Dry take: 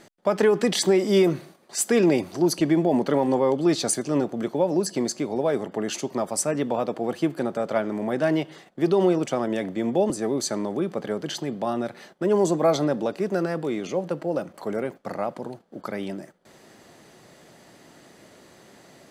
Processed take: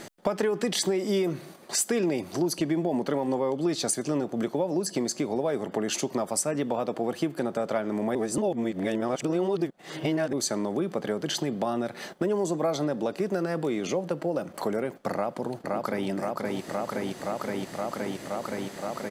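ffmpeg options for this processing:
-filter_complex "[0:a]asplit=2[s0][s1];[s1]afade=t=in:st=15.12:d=0.01,afade=t=out:st=16.08:d=0.01,aecho=0:1:520|1040|1560|2080|2600|3120|3640|4160|4680|5200|5720|6240:0.562341|0.47799|0.406292|0.345348|0.293546|0.249514|0.212087|0.180274|0.153233|0.130248|0.110711|0.094104[s2];[s0][s2]amix=inputs=2:normalize=0,asplit=3[s3][s4][s5];[s3]atrim=end=8.152[s6];[s4]atrim=start=8.148:end=10.332,asetpts=PTS-STARTPTS,areverse[s7];[s5]atrim=start=10.328[s8];[s6][s7]acrossfade=d=0.004:c1=hsin:c2=hsin[s9];[s9][s8]acrossfade=d=0.004:c1=hsin:c2=hsin,highshelf=f=8200:g=4,acompressor=threshold=0.0178:ratio=4,volume=2.66"

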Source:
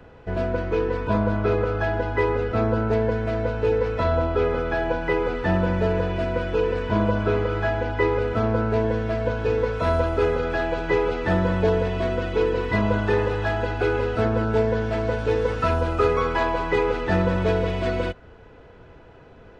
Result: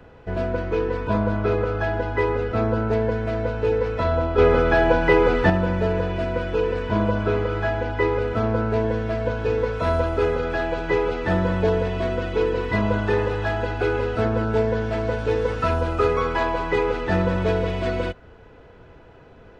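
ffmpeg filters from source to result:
-filter_complex "[0:a]asettb=1/sr,asplit=3[s0][s1][s2];[s0]atrim=end=4.384[s3];[s1]atrim=start=4.38:end=5.5,asetpts=PTS-STARTPTS,afade=t=in:d=0.004:c=qsin,afade=t=out:st=1.116:d=0.004:c=qsin,acontrast=81[s4];[s2]atrim=start=5.496[s5];[s3][s4]acrossfade=d=0.004:c1=hsin:c2=qsin[s6];[s6][s5]acrossfade=d=0.004:c1=qsin:c2=hsin"

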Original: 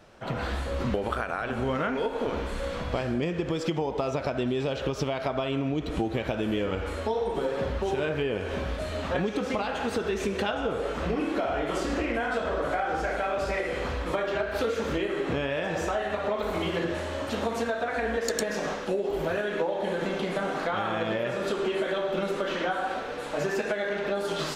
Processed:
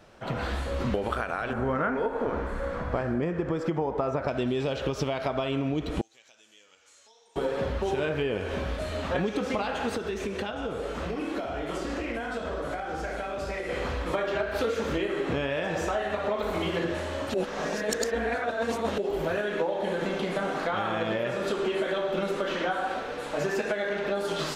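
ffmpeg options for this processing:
-filter_complex "[0:a]asettb=1/sr,asplit=3[s0][s1][s2];[s0]atrim=end=1.534[s3];[s1]atrim=start=1.53:end=4.28,asetpts=PTS-STARTPTS,afade=t=in:d=0.004:c=qsin,afade=t=out:st=2.746:d=0.004:c=qsin,highshelf=f=2200:t=q:w=1.5:g=-9.5[s4];[s2]atrim=start=4.276[s5];[s3][s4]acrossfade=d=0.004:c1=hsin:c2=qsin[s6];[s6][s5]acrossfade=d=0.004:c1=qsin:c2=hsin,asettb=1/sr,asplit=3[s7][s8][s9];[s7]atrim=end=6.014[s10];[s8]atrim=start=6.01:end=7.36,asetpts=PTS-STARTPTS,afade=t=in:d=0.004:c=qsin,afade=t=out:st=1.346:d=0.004:c=qsin,bandpass=f=6600:t=q:w=3.9[s11];[s9]atrim=start=7.356[s12];[s10][s11]acrossfade=d=0.004:c1=hsin:c2=qsin[s13];[s13][s12]acrossfade=d=0.004:c1=qsin:c2=hsin,asettb=1/sr,asplit=3[s14][s15][s16];[s14]atrim=end=9.954[s17];[s15]atrim=start=9.95:end=13.69,asetpts=PTS-STARTPTS,afade=t=in:d=0.004:c=qsin,afade=t=out:st=3.736:d=0.004:c=qsin,acrossover=split=350|3800[s18][s19][s20];[s18]acompressor=threshold=0.02:ratio=4[s21];[s19]acompressor=threshold=0.0224:ratio=4[s22];[s20]acompressor=threshold=0.00398:ratio=4[s23];[s21][s22][s23]amix=inputs=3:normalize=0[s24];[s16]atrim=start=13.686[s25];[s17][s24]acrossfade=d=0.004:c1=hsin:c2=qsin[s26];[s26][s25]acrossfade=d=0.004:c1=qsin:c2=hsin,asplit=3[s27][s28][s29];[s27]atrim=end=17.342[s30];[s28]atrim=start=17.338:end=18.982,asetpts=PTS-STARTPTS,areverse[s31];[s29]atrim=start=18.978[s32];[s30][s31]acrossfade=d=0.004:c1=hsin:c2=hsin[s33];[s33][s32]acrossfade=d=0.004:c1=hsin:c2=hsin"

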